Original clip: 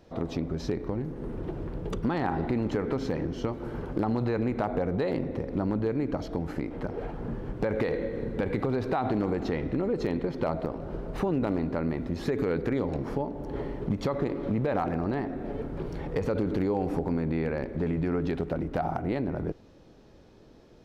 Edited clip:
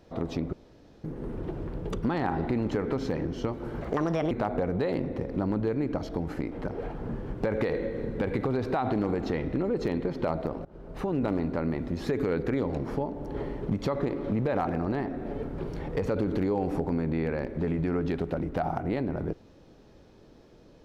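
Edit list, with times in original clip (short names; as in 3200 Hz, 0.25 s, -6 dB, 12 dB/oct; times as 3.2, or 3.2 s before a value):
0.53–1.04 room tone
3.81–4.5 speed 138%
10.84–11.41 fade in, from -22 dB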